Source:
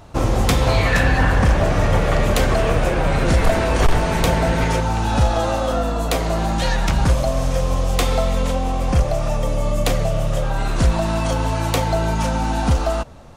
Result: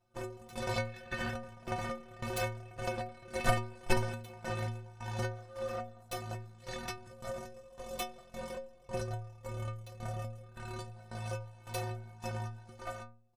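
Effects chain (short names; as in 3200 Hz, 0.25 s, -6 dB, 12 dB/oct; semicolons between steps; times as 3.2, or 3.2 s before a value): comb 5.8 ms, depth 85%; chopper 1.8 Hz, depth 65%, duty 45%; added harmonics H 3 -9 dB, 5 -31 dB, 6 -30 dB, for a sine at -2 dBFS; metallic resonator 110 Hz, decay 0.62 s, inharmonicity 0.03; gain +4.5 dB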